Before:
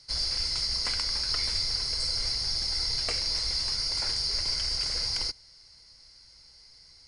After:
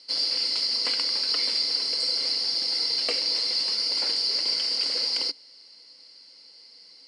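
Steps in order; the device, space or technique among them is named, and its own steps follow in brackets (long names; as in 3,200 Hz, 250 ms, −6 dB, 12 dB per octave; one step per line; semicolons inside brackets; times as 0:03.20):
television speaker (loudspeaker in its box 210–8,900 Hz, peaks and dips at 280 Hz +8 dB, 500 Hz +8 dB, 1,500 Hz −3 dB, 2,900 Hz +8 dB, 4,400 Hz +6 dB, 6,300 Hz −8 dB)
level +1 dB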